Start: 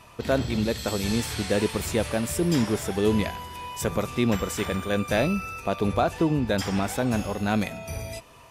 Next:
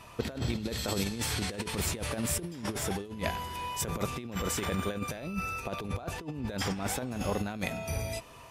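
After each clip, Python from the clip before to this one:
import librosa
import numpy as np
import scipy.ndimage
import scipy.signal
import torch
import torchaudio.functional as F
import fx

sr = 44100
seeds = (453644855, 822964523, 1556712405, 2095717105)

y = fx.over_compress(x, sr, threshold_db=-28.0, ratio=-0.5)
y = y * librosa.db_to_amplitude(-4.0)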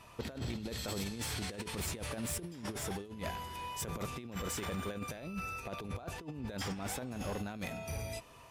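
y = np.clip(x, -10.0 ** (-27.0 / 20.0), 10.0 ** (-27.0 / 20.0))
y = y * librosa.db_to_amplitude(-5.5)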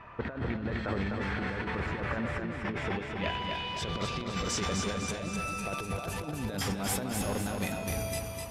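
y = fx.filter_sweep_lowpass(x, sr, from_hz=1700.0, to_hz=12000.0, start_s=2.26, end_s=5.96, q=2.2)
y = fx.echo_feedback(y, sr, ms=253, feedback_pct=49, wet_db=-4.5)
y = y * librosa.db_to_amplitude(5.0)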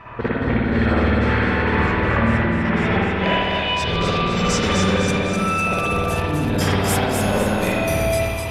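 y = fx.rev_spring(x, sr, rt60_s=1.2, pass_ms=(53,), chirp_ms=30, drr_db=-6.0)
y = y * librosa.db_to_amplitude(7.5)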